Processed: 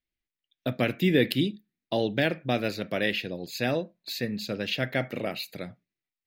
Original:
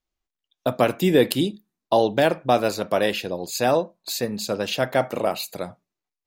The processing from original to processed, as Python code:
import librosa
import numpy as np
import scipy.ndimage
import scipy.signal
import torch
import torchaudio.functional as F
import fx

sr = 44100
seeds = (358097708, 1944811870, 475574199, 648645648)

y = fx.graphic_eq(x, sr, hz=(125, 250, 1000, 2000, 4000, 8000), db=(6, 4, -12, 11, 4, -10))
y = y * librosa.db_to_amplitude(-7.0)